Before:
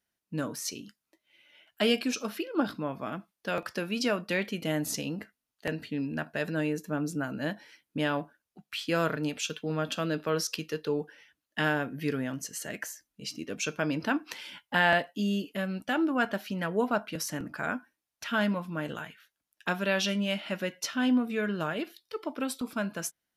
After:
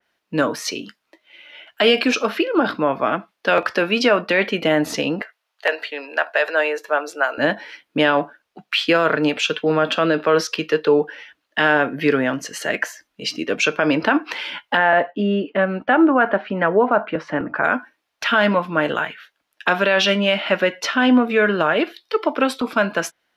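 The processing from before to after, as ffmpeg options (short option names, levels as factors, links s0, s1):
-filter_complex "[0:a]asettb=1/sr,asplit=3[s0][s1][s2];[s0]atrim=end=5.214[s3];[s1]atrim=start=5.21:end=7.38,asetpts=PTS-STARTPTS,afade=t=in:d=0.004:c=qsin,afade=t=out:st=2.166:d=0.004:c=qsin,highpass=f=510:w=0.5412,highpass=f=510:w=1.3066[s4];[s2]atrim=start=7.376[s5];[s3][s4]acrossfade=d=0.004:c1=hsin:c2=qsin[s6];[s6][s5]acrossfade=d=0.004:c1=qsin:c2=hsin,asettb=1/sr,asplit=3[s7][s8][s9];[s7]atrim=end=14.774[s10];[s8]atrim=start=14.77:end=17.65,asetpts=PTS-STARTPTS,afade=t=in:d=0.004:c=qsin,afade=t=out:st=2.876:d=0.004:c=qsin,lowpass=1700[s11];[s9]atrim=start=17.646[s12];[s10][s11]acrossfade=d=0.004:c1=hsin:c2=qsin[s13];[s13][s12]acrossfade=d=0.004:c1=qsin:c2=hsin,acrossover=split=330 4400:gain=0.224 1 0.158[s14][s15][s16];[s14][s15][s16]amix=inputs=3:normalize=0,alimiter=level_in=14.1:limit=0.891:release=50:level=0:latency=1,adynamicequalizer=threshold=0.0398:dfrequency=2900:dqfactor=0.7:tfrequency=2900:tqfactor=0.7:attack=5:release=100:ratio=0.375:range=2.5:mode=cutabove:tftype=highshelf,volume=0.562"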